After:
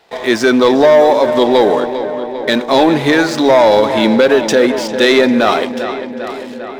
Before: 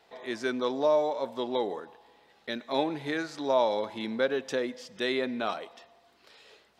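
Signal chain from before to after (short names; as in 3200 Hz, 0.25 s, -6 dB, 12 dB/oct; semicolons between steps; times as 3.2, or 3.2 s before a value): sample leveller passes 2; on a send: darkening echo 0.399 s, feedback 70%, low-pass 4000 Hz, level -12 dB; on the sum: maximiser +15.5 dB; gain -1 dB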